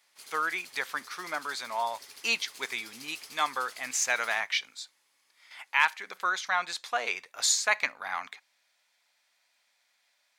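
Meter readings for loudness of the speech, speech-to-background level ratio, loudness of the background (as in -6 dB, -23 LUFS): -30.0 LUFS, 17.0 dB, -47.0 LUFS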